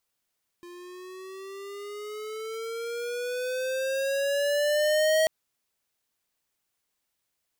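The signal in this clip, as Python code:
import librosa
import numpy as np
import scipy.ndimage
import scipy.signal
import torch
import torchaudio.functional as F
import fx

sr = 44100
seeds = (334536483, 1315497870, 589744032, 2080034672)

y = fx.riser_tone(sr, length_s=4.64, level_db=-21.5, wave='square', hz=348.0, rise_st=10.5, swell_db=23.0)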